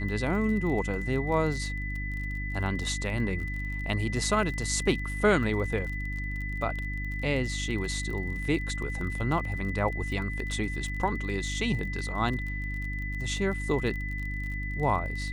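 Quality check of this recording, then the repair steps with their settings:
crackle 33/s -35 dBFS
hum 50 Hz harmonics 6 -34 dBFS
tone 2000 Hz -36 dBFS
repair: de-click; notch 2000 Hz, Q 30; de-hum 50 Hz, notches 6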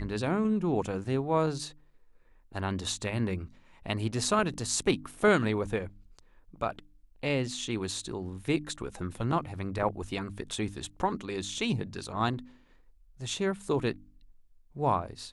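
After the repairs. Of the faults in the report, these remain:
none

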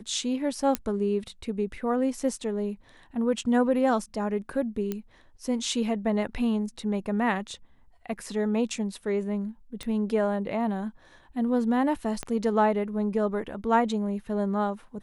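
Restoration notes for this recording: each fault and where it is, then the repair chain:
0.75 pop -10 dBFS
4.92 pop -17 dBFS
9.83 pop -21 dBFS
12.23 pop -18 dBFS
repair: de-click

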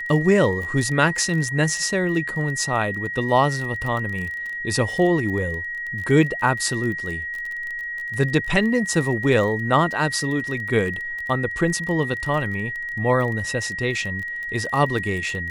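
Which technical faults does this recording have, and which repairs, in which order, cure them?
crackle 22/s -28 dBFS
tone 1900 Hz -27 dBFS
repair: de-click; notch 1900 Hz, Q 30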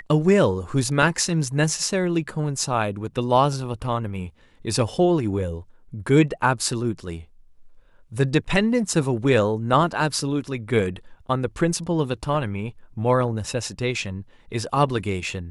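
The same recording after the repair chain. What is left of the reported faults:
none

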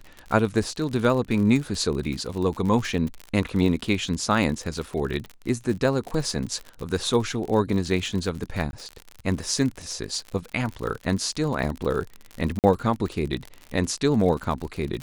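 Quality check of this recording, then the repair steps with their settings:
crackle 57/s -29 dBFS
8.71–8.73 gap 21 ms
12.59–12.64 gap 48 ms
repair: de-click; interpolate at 8.71, 21 ms; interpolate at 12.59, 48 ms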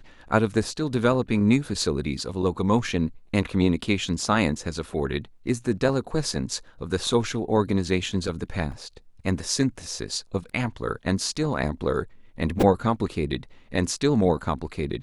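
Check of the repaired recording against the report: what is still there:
none

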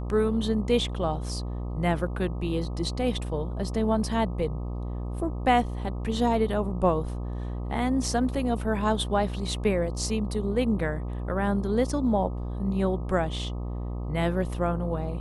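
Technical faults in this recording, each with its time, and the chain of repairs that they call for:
buzz 60 Hz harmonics 21 -32 dBFS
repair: de-hum 60 Hz, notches 21

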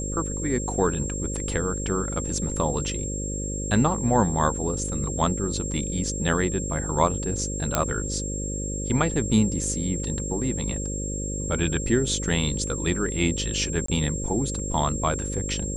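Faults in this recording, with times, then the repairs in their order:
buzz 50 Hz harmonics 11 -31 dBFS
tone 7500 Hz -32 dBFS
7.75 pop -5 dBFS
13.86–13.88 gap 24 ms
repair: de-click; notch 7500 Hz, Q 30; de-hum 50 Hz, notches 11; interpolate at 13.86, 24 ms

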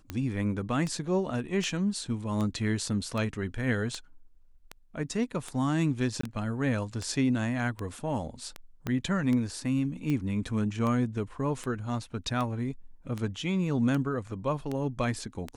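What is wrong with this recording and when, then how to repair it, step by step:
tick 78 rpm -20 dBFS
6.21–6.23 gap 24 ms
8.87 pop -18 dBFS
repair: de-click; interpolate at 6.21, 24 ms

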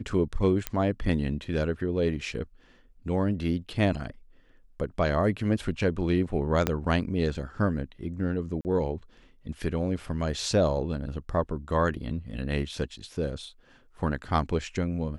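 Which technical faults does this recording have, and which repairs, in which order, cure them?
0.67 pop -11 dBFS
6.67 pop -9 dBFS
8.61–8.65 gap 39 ms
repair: de-click; interpolate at 8.61, 39 ms

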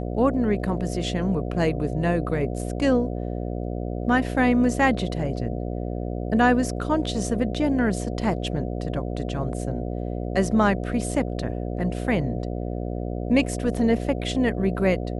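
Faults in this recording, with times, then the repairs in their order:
buzz 60 Hz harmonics 12 -29 dBFS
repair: de-hum 60 Hz, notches 12

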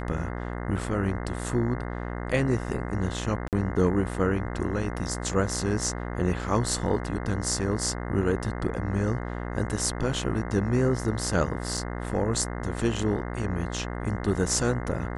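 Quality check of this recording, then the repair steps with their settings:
buzz 60 Hz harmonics 35 -33 dBFS
3.48–3.53 gap 48 ms
11.77 gap 4.5 ms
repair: de-hum 60 Hz, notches 35; interpolate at 3.48, 48 ms; interpolate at 11.77, 4.5 ms

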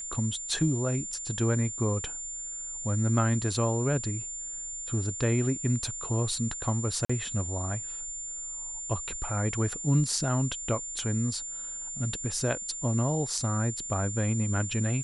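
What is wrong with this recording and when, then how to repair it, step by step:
tone 7200 Hz -35 dBFS
5.87 gap 2.3 ms
7.05–7.09 gap 45 ms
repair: notch 7200 Hz, Q 30; interpolate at 5.87, 2.3 ms; interpolate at 7.05, 45 ms

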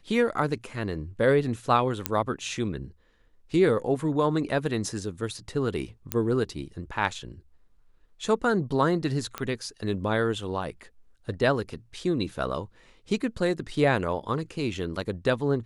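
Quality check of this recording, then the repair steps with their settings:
2.06 pop -6 dBFS
6.12 pop -9 dBFS
9.38 pop -15 dBFS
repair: de-click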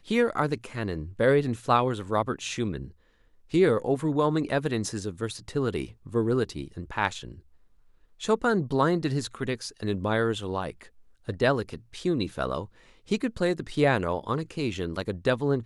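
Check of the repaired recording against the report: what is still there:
none

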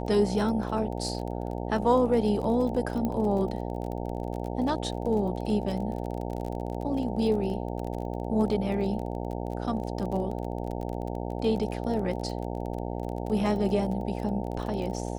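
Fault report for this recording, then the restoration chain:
buzz 60 Hz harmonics 15 -33 dBFS
crackle 30/s -34 dBFS
3.05 pop -18 dBFS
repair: de-click; de-hum 60 Hz, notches 15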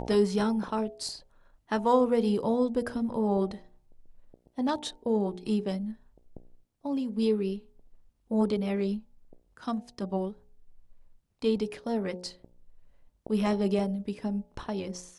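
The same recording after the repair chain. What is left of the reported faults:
none

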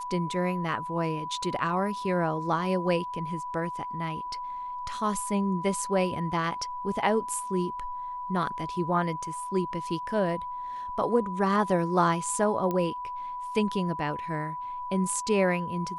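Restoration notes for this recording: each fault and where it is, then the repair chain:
tone 990 Hz -33 dBFS
12.71 pop -18 dBFS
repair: de-click; notch 990 Hz, Q 30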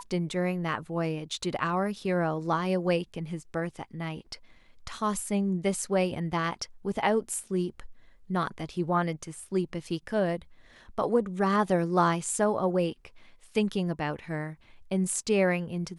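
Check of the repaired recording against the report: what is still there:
none

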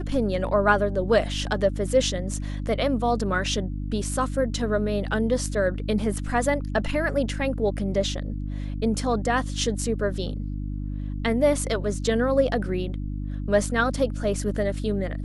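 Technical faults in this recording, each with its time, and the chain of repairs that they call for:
hum 50 Hz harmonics 6 -30 dBFS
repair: de-hum 50 Hz, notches 6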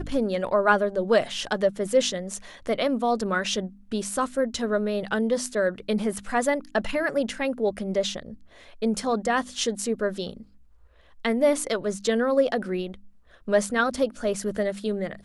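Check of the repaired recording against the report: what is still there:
none

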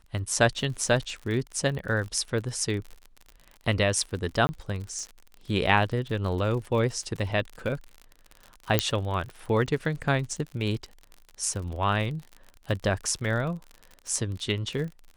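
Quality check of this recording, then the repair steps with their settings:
crackle 49/s -34 dBFS
4.47–4.49 gap 20 ms
8.79 pop -4 dBFS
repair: de-click; interpolate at 4.47, 20 ms

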